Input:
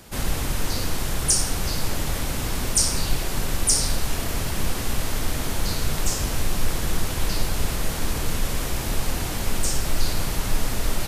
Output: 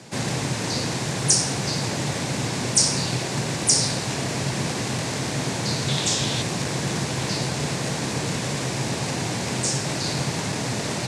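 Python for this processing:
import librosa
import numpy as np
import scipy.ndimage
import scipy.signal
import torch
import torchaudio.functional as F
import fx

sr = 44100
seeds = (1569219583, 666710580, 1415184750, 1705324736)

p1 = fx.peak_eq(x, sr, hz=3500.0, db=12.0, octaves=0.48, at=(5.88, 6.42))
p2 = fx.quant_companded(p1, sr, bits=4)
p3 = p1 + (p2 * librosa.db_to_amplitude(-9.5))
p4 = fx.cabinet(p3, sr, low_hz=120.0, low_slope=24, high_hz=8200.0, hz=(130.0, 1300.0, 3100.0), db=(7, -6, -4))
y = p4 * librosa.db_to_amplitude(1.5)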